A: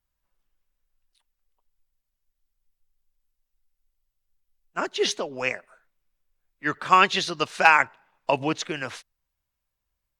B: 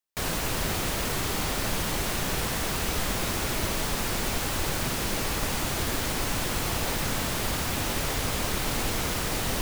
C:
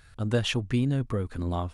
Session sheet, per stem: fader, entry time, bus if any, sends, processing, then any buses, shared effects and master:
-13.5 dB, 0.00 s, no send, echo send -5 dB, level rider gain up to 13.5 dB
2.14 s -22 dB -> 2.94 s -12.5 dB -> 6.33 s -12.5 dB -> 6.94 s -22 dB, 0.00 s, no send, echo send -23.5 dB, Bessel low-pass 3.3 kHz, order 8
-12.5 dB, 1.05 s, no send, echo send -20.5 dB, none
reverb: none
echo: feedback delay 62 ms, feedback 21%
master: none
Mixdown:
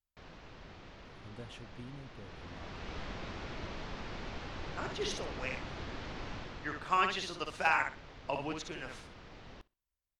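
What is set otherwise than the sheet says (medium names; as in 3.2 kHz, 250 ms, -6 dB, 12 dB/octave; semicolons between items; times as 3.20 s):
stem A: missing level rider gain up to 13.5 dB; stem C -12.5 dB -> -23.0 dB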